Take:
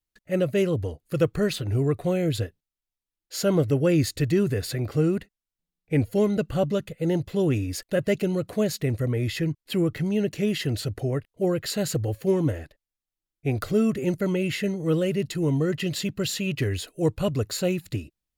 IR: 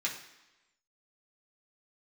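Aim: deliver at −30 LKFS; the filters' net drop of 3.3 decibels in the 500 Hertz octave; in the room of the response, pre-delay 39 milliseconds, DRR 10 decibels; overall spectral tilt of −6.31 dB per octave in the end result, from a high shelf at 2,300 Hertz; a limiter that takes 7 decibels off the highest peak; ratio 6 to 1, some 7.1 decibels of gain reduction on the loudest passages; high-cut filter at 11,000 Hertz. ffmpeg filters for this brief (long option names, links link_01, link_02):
-filter_complex "[0:a]lowpass=11000,equalizer=frequency=500:width_type=o:gain=-4,highshelf=frequency=2300:gain=-6,acompressor=threshold=-26dB:ratio=6,alimiter=level_in=1.5dB:limit=-24dB:level=0:latency=1,volume=-1.5dB,asplit=2[link_01][link_02];[1:a]atrim=start_sample=2205,adelay=39[link_03];[link_02][link_03]afir=irnorm=-1:irlink=0,volume=-15dB[link_04];[link_01][link_04]amix=inputs=2:normalize=0,volume=4.5dB"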